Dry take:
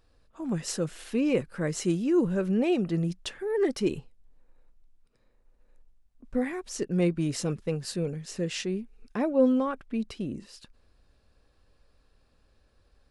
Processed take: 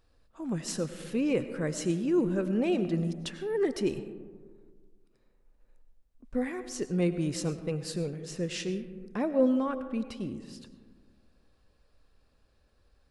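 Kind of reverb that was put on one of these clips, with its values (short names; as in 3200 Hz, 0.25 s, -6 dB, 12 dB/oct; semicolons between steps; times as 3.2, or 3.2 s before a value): digital reverb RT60 1.7 s, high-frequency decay 0.3×, pre-delay 60 ms, DRR 11 dB; gain -2.5 dB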